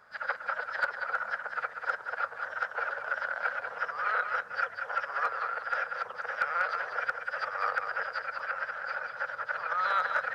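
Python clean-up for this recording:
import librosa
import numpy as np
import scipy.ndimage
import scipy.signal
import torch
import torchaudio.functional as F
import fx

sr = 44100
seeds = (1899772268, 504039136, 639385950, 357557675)

y = fx.fix_declip(x, sr, threshold_db=-18.0)
y = fx.fix_interpolate(y, sr, at_s=(8.39,), length_ms=2.8)
y = fx.fix_echo_inverse(y, sr, delay_ms=192, level_db=-7.0)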